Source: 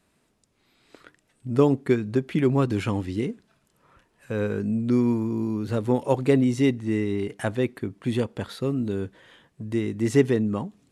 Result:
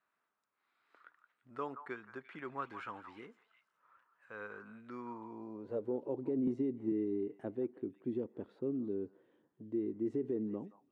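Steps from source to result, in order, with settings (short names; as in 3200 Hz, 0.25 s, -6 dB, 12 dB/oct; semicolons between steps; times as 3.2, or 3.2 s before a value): delay with a stepping band-pass 0.172 s, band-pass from 1100 Hz, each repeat 1.4 oct, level -8 dB; band-pass sweep 1300 Hz -> 340 Hz, 4.9–6.08; limiter -21.5 dBFS, peak gain reduction 10 dB; 6.47–6.92 three-band squash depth 100%; gain -6 dB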